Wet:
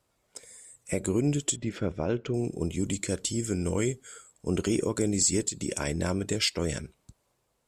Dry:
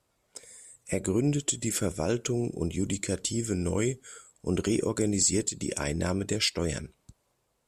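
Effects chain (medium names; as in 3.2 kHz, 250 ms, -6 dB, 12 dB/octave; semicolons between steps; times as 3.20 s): 1.56–2.34 s: distance through air 270 m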